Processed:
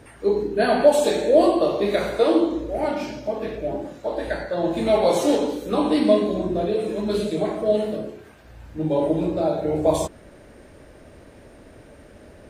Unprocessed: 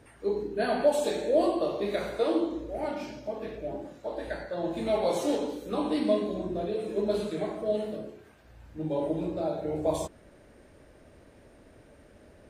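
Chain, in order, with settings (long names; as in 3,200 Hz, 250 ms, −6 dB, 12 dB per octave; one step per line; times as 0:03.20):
0:06.95–0:07.44: parametric band 340 Hz → 2,000 Hz −14 dB 0.57 octaves
level +8.5 dB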